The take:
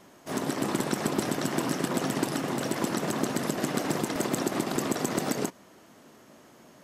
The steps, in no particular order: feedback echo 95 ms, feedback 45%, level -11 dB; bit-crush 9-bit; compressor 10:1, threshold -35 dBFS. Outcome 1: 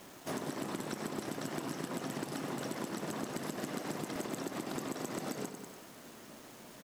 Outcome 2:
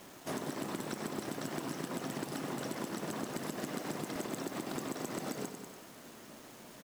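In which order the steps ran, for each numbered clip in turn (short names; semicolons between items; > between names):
feedback echo > bit-crush > compressor; feedback echo > compressor > bit-crush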